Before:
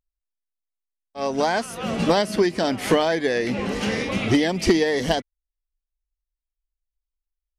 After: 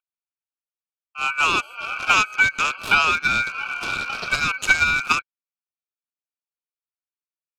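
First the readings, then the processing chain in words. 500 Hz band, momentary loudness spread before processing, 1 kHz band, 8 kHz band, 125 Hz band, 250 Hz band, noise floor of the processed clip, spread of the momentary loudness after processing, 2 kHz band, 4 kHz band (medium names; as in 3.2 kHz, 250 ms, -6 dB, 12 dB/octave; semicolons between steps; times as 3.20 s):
-17.0 dB, 6 LU, +4.0 dB, +2.5 dB, -9.5 dB, -16.5 dB, under -85 dBFS, 9 LU, +10.5 dB, +2.5 dB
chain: local Wiener filter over 25 samples; steep high-pass 350 Hz 72 dB/octave; ring modulator 1.9 kHz; trim +6 dB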